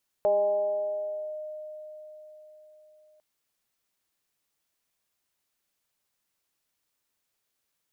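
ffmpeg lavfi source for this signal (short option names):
-f lavfi -i "aevalsrc='0.112*pow(10,-3*t/4.56)*sin(2*PI*614*t+0.51*clip(1-t/1.16,0,1)*sin(2*PI*0.34*614*t))':d=2.95:s=44100"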